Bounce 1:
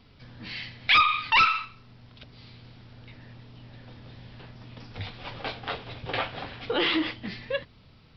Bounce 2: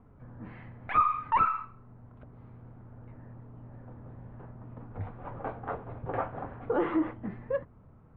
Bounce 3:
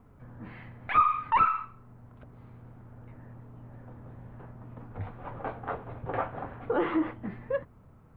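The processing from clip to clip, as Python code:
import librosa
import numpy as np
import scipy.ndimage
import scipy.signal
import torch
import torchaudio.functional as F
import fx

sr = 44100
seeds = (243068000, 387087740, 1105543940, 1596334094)

y1 = scipy.signal.sosfilt(scipy.signal.butter(4, 1300.0, 'lowpass', fs=sr, output='sos'), x)
y2 = fx.high_shelf(y1, sr, hz=2600.0, db=10.5)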